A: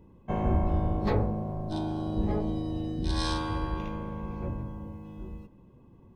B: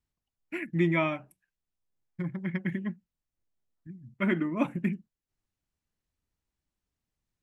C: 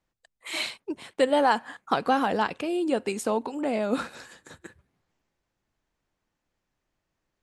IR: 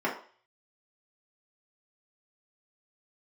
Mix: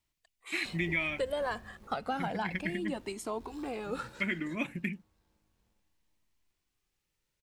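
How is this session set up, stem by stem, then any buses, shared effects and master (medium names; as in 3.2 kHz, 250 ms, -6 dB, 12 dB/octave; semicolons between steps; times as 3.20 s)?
-15.5 dB, 0.35 s, no bus, no send, echo send -15.5 dB, send-on-delta sampling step -32 dBFS; gate with hold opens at -24 dBFS; auto duck -10 dB, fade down 1.05 s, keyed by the second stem
-4.5 dB, 0.00 s, bus A, no send, no echo send, resonant high shelf 1.6 kHz +10 dB, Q 1.5
-3.5 dB, 0.00 s, bus A, no send, no echo send, Shepard-style flanger rising 0.32 Hz
bus A: 0.0 dB, compression 3:1, threshold -30 dBFS, peak gain reduction 8 dB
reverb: none
echo: feedback delay 404 ms, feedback 47%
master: none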